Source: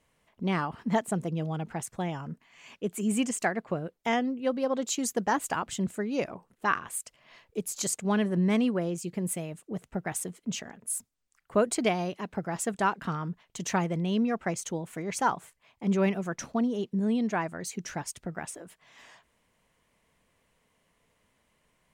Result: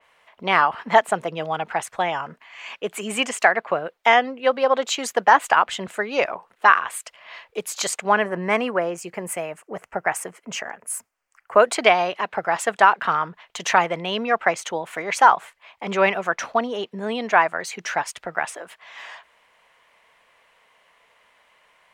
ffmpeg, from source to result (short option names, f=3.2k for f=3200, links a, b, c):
-filter_complex "[0:a]asettb=1/sr,asplit=3[a][b][c];[a]atrim=end=8.094[d];[b]atrim=start=8.09:end=11.6,asetpts=PTS-STARTPTS,afade=t=in:d=0.004:c=qsin,afade=t=out:st=3.506:d=0.004:c=qsin,equalizer=f=3.7k:t=o:w=0.56:g=-14[e];[c]atrim=start=11.596[f];[d][e]acrossfade=d=0.004:c1=hsin:c2=qsin[g];[g][f]acrossfade=d=0.004:c1=qsin:c2=hsin,acrossover=split=560 3900:gain=0.0708 1 0.224[h][i][j];[h][i][j]amix=inputs=3:normalize=0,alimiter=level_in=17dB:limit=-1dB:release=50:level=0:latency=1,adynamicequalizer=threshold=0.02:dfrequency=3800:dqfactor=0.7:tfrequency=3800:tqfactor=0.7:attack=5:release=100:ratio=0.375:range=2:mode=cutabove:tftype=highshelf,volume=-1dB"